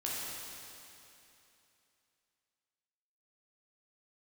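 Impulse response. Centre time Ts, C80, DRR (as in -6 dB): 0.179 s, -1.5 dB, -6.5 dB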